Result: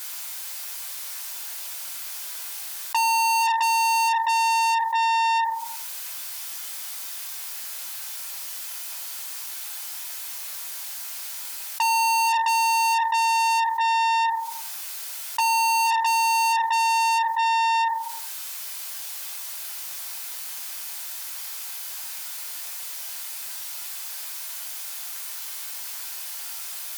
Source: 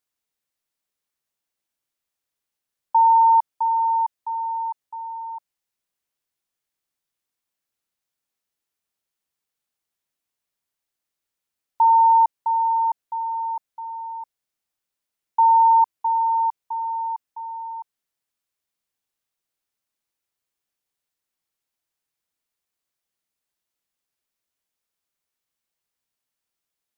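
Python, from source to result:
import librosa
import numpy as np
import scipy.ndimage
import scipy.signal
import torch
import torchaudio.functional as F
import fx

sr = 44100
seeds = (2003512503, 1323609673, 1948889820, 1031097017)

y = fx.tilt_eq(x, sr, slope=2.0)
y = fx.room_shoebox(y, sr, seeds[0], volume_m3=400.0, walls='furnished', distance_m=5.0)
y = fx.tube_stage(y, sr, drive_db=28.0, bias=0.7)
y = scipy.signal.sosfilt(scipy.signal.butter(2, 790.0, 'highpass', fs=sr, output='sos'), y)
y = fx.env_flatten(y, sr, amount_pct=70)
y = y * 10.0 ** (9.0 / 20.0)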